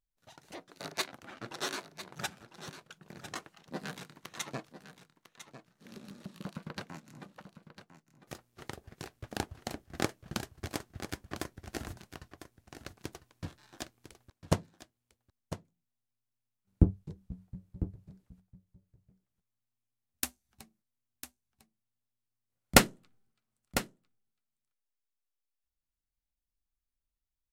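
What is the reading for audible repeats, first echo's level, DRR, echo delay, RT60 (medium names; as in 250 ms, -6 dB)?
1, -12.0 dB, no reverb, 1001 ms, no reverb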